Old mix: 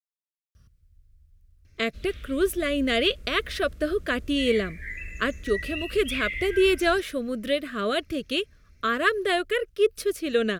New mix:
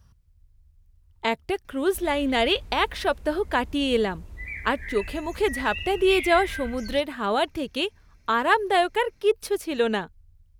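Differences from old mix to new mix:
speech: entry -0.55 s; master: remove Butterworth band-stop 870 Hz, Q 1.7

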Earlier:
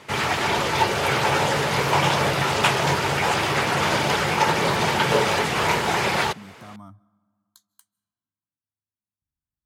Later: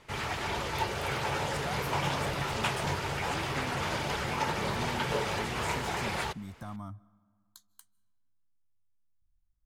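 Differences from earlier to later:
background -11.5 dB; master: remove high-pass 120 Hz 12 dB/octave

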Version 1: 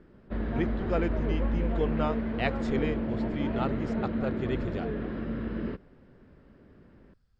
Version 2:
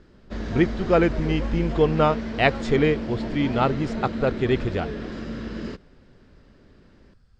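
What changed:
speech +11.0 dB; background: remove distance through air 480 m

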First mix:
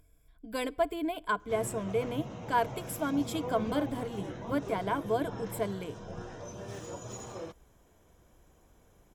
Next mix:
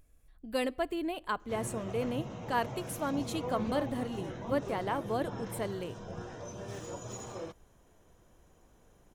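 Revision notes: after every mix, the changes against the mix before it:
speech: remove rippled EQ curve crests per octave 1.7, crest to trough 12 dB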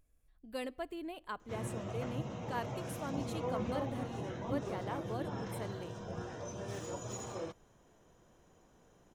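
speech -8.5 dB

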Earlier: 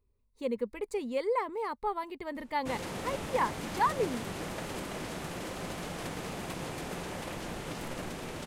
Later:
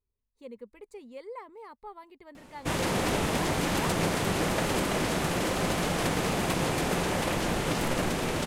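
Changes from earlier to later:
speech -11.5 dB; background +10.5 dB

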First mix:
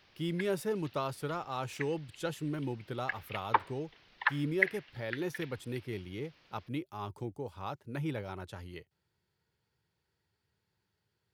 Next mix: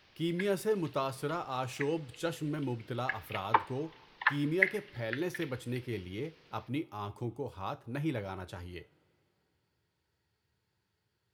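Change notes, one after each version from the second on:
reverb: on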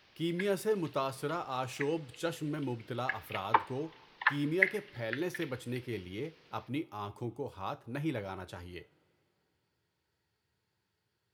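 master: add bass shelf 100 Hz -6 dB

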